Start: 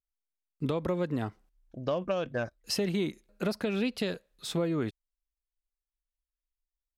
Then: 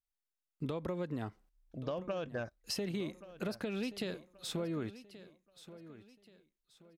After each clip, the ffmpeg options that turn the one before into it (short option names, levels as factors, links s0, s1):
-af "acompressor=threshold=0.0251:ratio=2.5,aecho=1:1:1129|2258|3387:0.168|0.0588|0.0206,volume=0.668"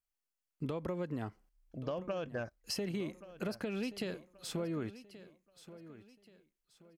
-af "bandreject=f=3700:w=7.7"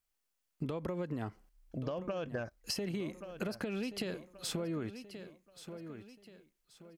-af "acompressor=threshold=0.01:ratio=6,volume=2"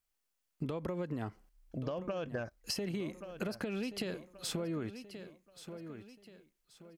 -af anull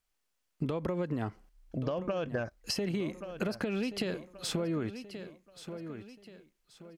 -af "highshelf=f=9200:g=-7.5,volume=1.68"